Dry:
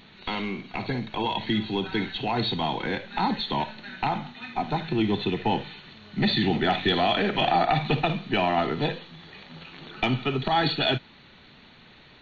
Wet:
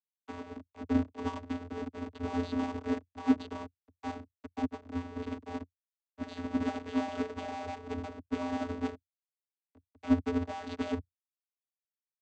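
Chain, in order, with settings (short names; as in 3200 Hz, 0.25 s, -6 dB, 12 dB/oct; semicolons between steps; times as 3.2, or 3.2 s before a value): Schmitt trigger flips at -29.5 dBFS; vocoder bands 16, square 87.3 Hz; upward expander 2.5:1, over -37 dBFS; gain +3 dB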